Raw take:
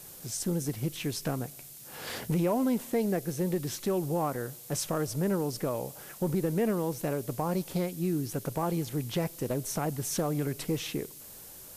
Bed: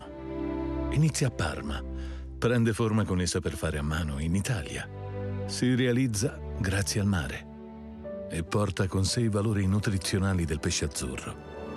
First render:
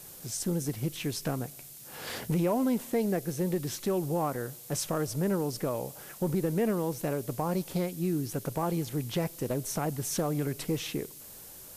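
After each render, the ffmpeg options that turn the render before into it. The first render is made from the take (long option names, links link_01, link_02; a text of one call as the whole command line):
ffmpeg -i in.wav -af anull out.wav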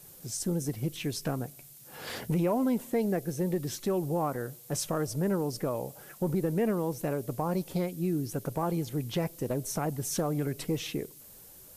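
ffmpeg -i in.wav -af "afftdn=noise_reduction=6:noise_floor=-48" out.wav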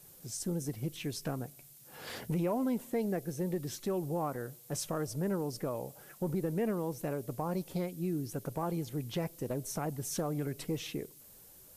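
ffmpeg -i in.wav -af "volume=-4.5dB" out.wav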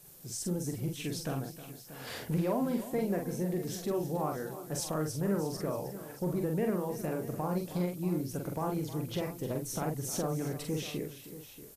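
ffmpeg -i in.wav -filter_complex "[0:a]asplit=2[link_01][link_02];[link_02]adelay=45,volume=-4dB[link_03];[link_01][link_03]amix=inputs=2:normalize=0,asplit=2[link_04][link_05];[link_05]aecho=0:1:313|634:0.2|0.188[link_06];[link_04][link_06]amix=inputs=2:normalize=0" out.wav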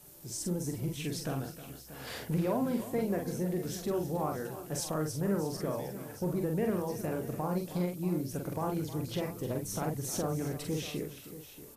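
ffmpeg -i in.wav -i bed.wav -filter_complex "[1:a]volume=-23.5dB[link_01];[0:a][link_01]amix=inputs=2:normalize=0" out.wav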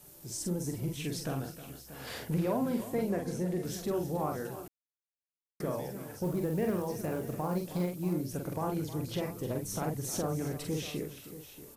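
ffmpeg -i in.wav -filter_complex "[0:a]asettb=1/sr,asplit=3[link_01][link_02][link_03];[link_01]atrim=end=3.104[link_04];[link_02]atrim=start=3.1:end=3.65,asetpts=PTS-STARTPTS,afade=type=in:duration=0.004:curve=qsin,afade=type=out:start_time=0.546:duration=0.004:curve=qsin,lowpass=11000[link_05];[link_03]atrim=start=3.646[link_06];[link_04][link_05]acrossfade=duration=0.004:curve1=hsin:curve2=qsin[link_07];[link_07][link_06]acrossfade=duration=0.004:curve1=qsin:curve2=hsin,asettb=1/sr,asplit=3[link_08][link_09][link_10];[link_08]atrim=end=6.244[link_11];[link_09]atrim=start=6.24:end=8.13,asetpts=PTS-STARTPTS,afade=type=in:duration=0.004:curve=qsin,afade=type=out:start_time=1.886:duration=0.004:curve=qsin,acrusher=bits=7:mode=log:mix=0:aa=0.000001[link_12];[link_10]atrim=start=8.126[link_13];[link_11][link_12]acrossfade=duration=0.004:curve1=hsin:curve2=qsin[link_14];[link_14][link_13]acrossfade=duration=0.004:curve1=qsin:curve2=hsin,asplit=3[link_15][link_16][link_17];[link_15]atrim=end=4.68,asetpts=PTS-STARTPTS,afade=type=out:start_time=4.676:duration=0.004:curve=hsin[link_18];[link_16]atrim=start=4.68:end=5.6,asetpts=PTS-STARTPTS,volume=0[link_19];[link_17]atrim=start=5.6,asetpts=PTS-STARTPTS,afade=type=in:duration=0.004:curve=hsin[link_20];[link_18][link_19][link_20]concat=n=3:v=0:a=1" out.wav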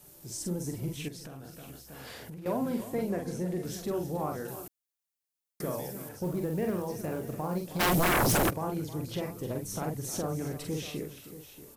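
ffmpeg -i in.wav -filter_complex "[0:a]asettb=1/sr,asplit=3[link_01][link_02][link_03];[link_01]atrim=end=1.084[link_04];[link_02]atrim=start=1.08:end=2.46,asetpts=PTS-STARTPTS,afade=type=in:duration=0.004:curve=qsin,afade=type=out:start_time=1.376:duration=0.004:curve=qsin,acompressor=threshold=-40dB:ratio=10:attack=3.2:release=140:knee=1:detection=peak[link_05];[link_03]atrim=start=2.456[link_06];[link_04][link_05]acrossfade=duration=0.004:curve1=hsin:curve2=qsin[link_07];[link_07][link_06]acrossfade=duration=0.004:curve1=qsin:curve2=hsin,asettb=1/sr,asplit=3[link_08][link_09][link_10];[link_08]atrim=end=4.484[link_11];[link_09]atrim=start=4.48:end=6.09,asetpts=PTS-STARTPTS,afade=type=in:duration=0.004:curve=qsin,afade=type=out:start_time=1.606:duration=0.004:curve=qsin,highshelf=frequency=5000:gain=9[link_12];[link_10]atrim=start=6.086[link_13];[link_11][link_12]acrossfade=duration=0.004:curve1=hsin:curve2=qsin[link_14];[link_14][link_13]acrossfade=duration=0.004:curve1=qsin:curve2=hsin,asplit=3[link_15][link_16][link_17];[link_15]afade=type=out:start_time=7.79:duration=0.02[link_18];[link_16]aeval=exprs='0.0841*sin(PI/2*7.94*val(0)/0.0841)':channel_layout=same,afade=type=in:start_time=7.79:duration=0.02,afade=type=out:start_time=8.49:duration=0.02[link_19];[link_17]afade=type=in:start_time=8.49:duration=0.02[link_20];[link_18][link_19][link_20]amix=inputs=3:normalize=0" out.wav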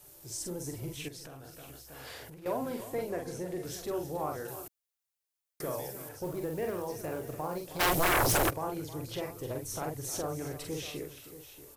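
ffmpeg -i in.wav -af "equalizer=frequency=200:width=2:gain=-13" out.wav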